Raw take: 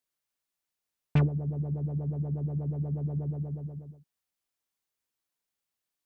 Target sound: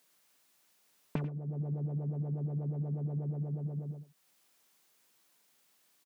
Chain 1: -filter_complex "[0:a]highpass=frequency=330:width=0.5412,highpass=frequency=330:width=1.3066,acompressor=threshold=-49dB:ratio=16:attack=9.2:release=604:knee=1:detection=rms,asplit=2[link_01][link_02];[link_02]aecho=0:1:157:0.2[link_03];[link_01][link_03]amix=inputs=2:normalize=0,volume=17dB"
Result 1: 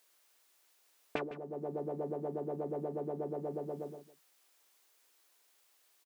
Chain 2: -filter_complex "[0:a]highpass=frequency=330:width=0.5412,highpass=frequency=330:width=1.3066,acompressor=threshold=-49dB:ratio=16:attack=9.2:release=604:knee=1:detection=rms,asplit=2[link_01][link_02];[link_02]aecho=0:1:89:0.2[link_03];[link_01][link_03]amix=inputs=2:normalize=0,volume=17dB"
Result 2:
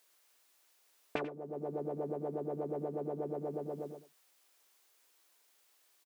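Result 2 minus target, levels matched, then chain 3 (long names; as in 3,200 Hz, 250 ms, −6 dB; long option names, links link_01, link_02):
125 Hz band −11.5 dB
-filter_complex "[0:a]highpass=frequency=140:width=0.5412,highpass=frequency=140:width=1.3066,acompressor=threshold=-49dB:ratio=16:attack=9.2:release=604:knee=1:detection=rms,asplit=2[link_01][link_02];[link_02]aecho=0:1:89:0.2[link_03];[link_01][link_03]amix=inputs=2:normalize=0,volume=17dB"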